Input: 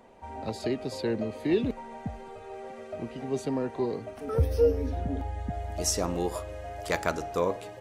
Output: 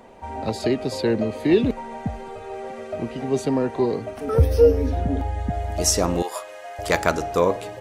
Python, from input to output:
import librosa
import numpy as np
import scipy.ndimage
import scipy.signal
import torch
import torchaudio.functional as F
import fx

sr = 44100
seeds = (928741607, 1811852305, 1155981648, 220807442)

y = fx.highpass(x, sr, hz=780.0, slope=12, at=(6.22, 6.79))
y = y * librosa.db_to_amplitude(8.0)